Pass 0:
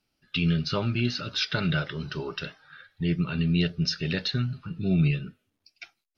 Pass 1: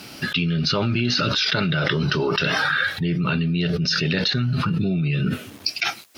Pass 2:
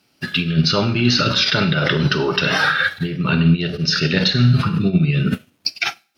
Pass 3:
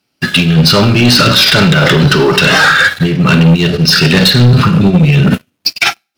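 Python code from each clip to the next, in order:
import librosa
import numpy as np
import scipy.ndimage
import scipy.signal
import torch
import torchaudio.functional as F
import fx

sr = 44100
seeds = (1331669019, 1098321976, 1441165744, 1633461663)

y1 = scipy.signal.sosfilt(scipy.signal.butter(2, 110.0, 'highpass', fs=sr, output='sos'), x)
y1 = fx.env_flatten(y1, sr, amount_pct=100)
y1 = F.gain(torch.from_numpy(y1), -1.5).numpy()
y2 = fx.rev_schroeder(y1, sr, rt60_s=0.54, comb_ms=33, drr_db=8.0)
y2 = fx.upward_expand(y2, sr, threshold_db=-38.0, expansion=2.5)
y2 = F.gain(torch.from_numpy(y2), 8.0).numpy()
y3 = fx.leveller(y2, sr, passes=3)
y3 = F.gain(torch.from_numpy(y3), 1.5).numpy()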